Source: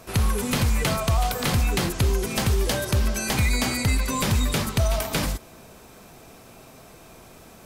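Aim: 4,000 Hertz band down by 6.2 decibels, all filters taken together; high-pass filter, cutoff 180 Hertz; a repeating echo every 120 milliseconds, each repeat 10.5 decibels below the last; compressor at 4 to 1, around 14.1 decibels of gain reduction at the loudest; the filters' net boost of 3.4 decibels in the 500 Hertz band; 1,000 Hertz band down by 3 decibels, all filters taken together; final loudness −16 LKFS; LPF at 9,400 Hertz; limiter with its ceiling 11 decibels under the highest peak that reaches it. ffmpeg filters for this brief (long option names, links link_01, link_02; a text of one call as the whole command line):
ffmpeg -i in.wav -af "highpass=180,lowpass=9400,equalizer=frequency=500:width_type=o:gain=6.5,equalizer=frequency=1000:width_type=o:gain=-6.5,equalizer=frequency=4000:width_type=o:gain=-7.5,acompressor=threshold=-40dB:ratio=4,alimiter=level_in=12.5dB:limit=-24dB:level=0:latency=1,volume=-12.5dB,aecho=1:1:120|240|360:0.299|0.0896|0.0269,volume=29dB" out.wav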